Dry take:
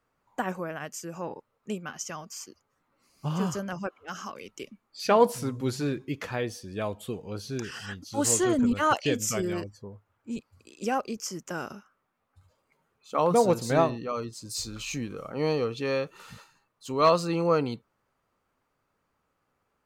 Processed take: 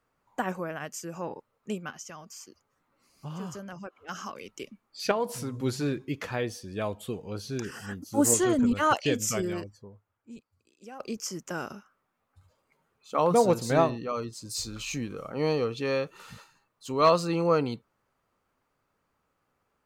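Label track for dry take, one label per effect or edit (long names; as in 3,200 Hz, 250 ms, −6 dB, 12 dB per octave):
1.900000	4.090000	downward compressor 1.5 to 1, threshold −50 dBFS
5.110000	5.540000	downward compressor 2 to 1, threshold −32 dBFS
7.650000	8.340000	drawn EQ curve 110 Hz 0 dB, 260 Hz +6 dB, 1,900 Hz −3 dB, 3,700 Hz −11 dB, 7,100 Hz 0 dB, 12,000 Hz +6 dB
9.350000	11.000000	fade out quadratic, to −17 dB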